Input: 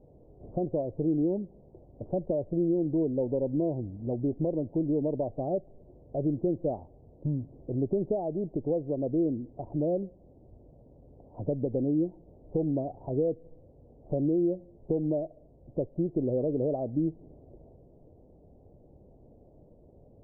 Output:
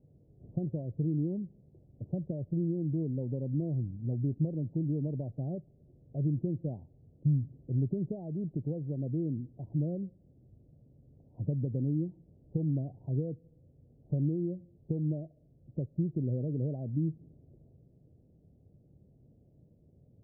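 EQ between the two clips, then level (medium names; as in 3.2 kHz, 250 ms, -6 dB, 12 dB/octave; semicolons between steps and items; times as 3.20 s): dynamic bell 140 Hz, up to +5 dB, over -43 dBFS, Q 1.1; band-pass filter 130 Hz, Q 1.3; 0.0 dB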